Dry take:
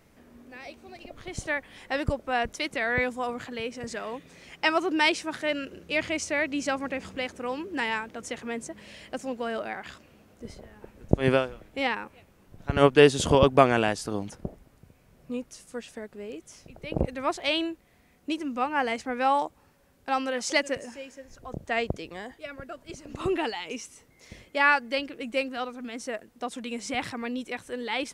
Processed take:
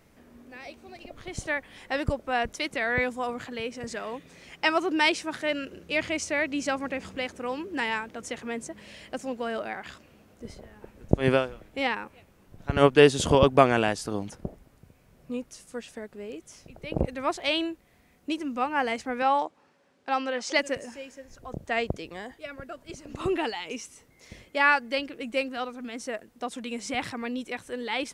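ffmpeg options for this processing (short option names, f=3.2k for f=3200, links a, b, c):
-filter_complex "[0:a]asettb=1/sr,asplit=3[a][b][c];[a]atrim=end=19.224[d];[b]atrim=start=19.22:end=20.59,asetpts=PTS-STARTPTS,afade=t=in:d=0.004:c=qsin,afade=t=out:st=1.366:d=0.004:c=qsin,highpass=220,lowpass=5.7k[e];[c]atrim=start=20.586[f];[d][e]acrossfade=d=0.004:c1=hsin:c2=qsin[g];[g][f]acrossfade=d=0.004:c1=qsin:c2=hsin"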